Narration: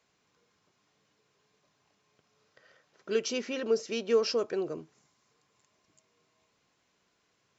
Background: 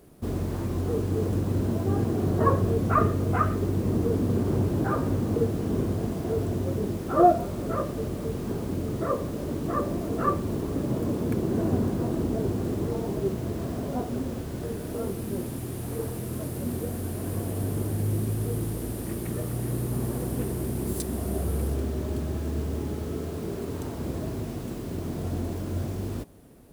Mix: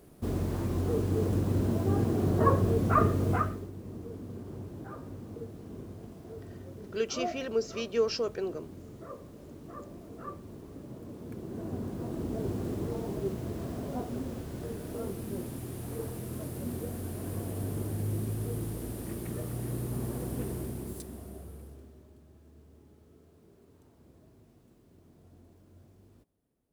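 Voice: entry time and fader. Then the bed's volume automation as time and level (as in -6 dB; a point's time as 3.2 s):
3.85 s, -2.0 dB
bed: 3.33 s -2 dB
3.71 s -17 dB
11.07 s -17 dB
12.5 s -5.5 dB
20.55 s -5.5 dB
22.17 s -27 dB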